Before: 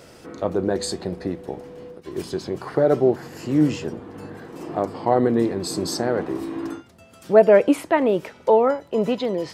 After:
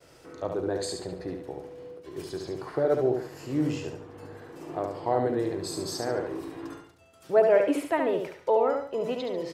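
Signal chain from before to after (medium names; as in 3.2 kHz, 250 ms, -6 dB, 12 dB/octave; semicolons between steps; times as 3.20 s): expander -45 dBFS; peaking EQ 210 Hz -13.5 dB 0.29 oct; on a send: feedback delay 71 ms, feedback 34%, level -5 dB; on the sum: trim -7.5 dB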